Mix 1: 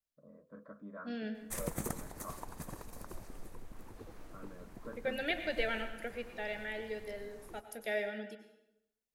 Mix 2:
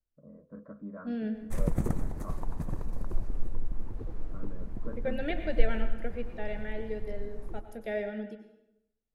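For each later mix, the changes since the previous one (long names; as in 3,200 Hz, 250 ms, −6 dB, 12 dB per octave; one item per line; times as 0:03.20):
background: send +11.5 dB
master: add spectral tilt −3.5 dB per octave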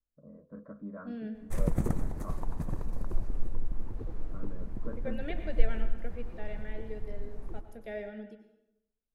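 second voice −6.0 dB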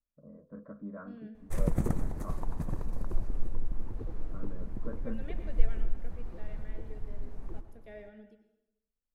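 second voice −9.0 dB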